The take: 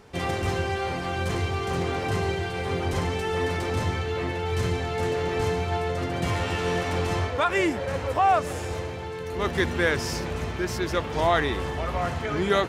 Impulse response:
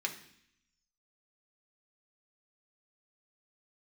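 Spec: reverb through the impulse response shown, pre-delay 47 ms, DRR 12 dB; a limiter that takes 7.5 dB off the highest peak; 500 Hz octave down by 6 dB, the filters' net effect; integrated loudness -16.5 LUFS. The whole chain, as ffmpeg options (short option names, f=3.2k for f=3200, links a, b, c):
-filter_complex "[0:a]equalizer=f=500:t=o:g=-8,alimiter=limit=-18.5dB:level=0:latency=1,asplit=2[a][b];[1:a]atrim=start_sample=2205,adelay=47[c];[b][c]afir=irnorm=-1:irlink=0,volume=-15dB[d];[a][d]amix=inputs=2:normalize=0,volume=13dB"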